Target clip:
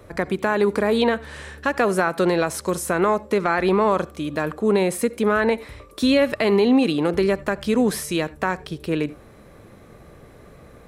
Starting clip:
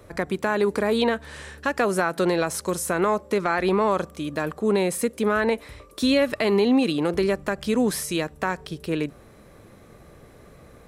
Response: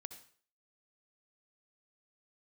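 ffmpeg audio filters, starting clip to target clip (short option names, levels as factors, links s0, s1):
-filter_complex "[0:a]asplit=2[s0][s1];[1:a]atrim=start_sample=2205,afade=t=out:st=0.15:d=0.01,atrim=end_sample=7056,lowpass=4500[s2];[s1][s2]afir=irnorm=-1:irlink=0,volume=0.668[s3];[s0][s3]amix=inputs=2:normalize=0"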